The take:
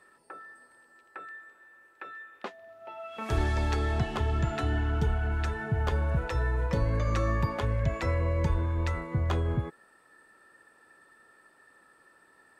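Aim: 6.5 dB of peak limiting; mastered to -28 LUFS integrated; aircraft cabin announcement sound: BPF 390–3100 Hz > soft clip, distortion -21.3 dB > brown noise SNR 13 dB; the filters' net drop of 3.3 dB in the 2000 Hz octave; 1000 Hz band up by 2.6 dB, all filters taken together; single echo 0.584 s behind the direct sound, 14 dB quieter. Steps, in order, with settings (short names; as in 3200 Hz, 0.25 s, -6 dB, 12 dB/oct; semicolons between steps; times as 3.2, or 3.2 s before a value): bell 1000 Hz +5 dB; bell 2000 Hz -5.5 dB; limiter -21.5 dBFS; BPF 390–3100 Hz; echo 0.584 s -14 dB; soft clip -27 dBFS; brown noise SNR 13 dB; gain +10.5 dB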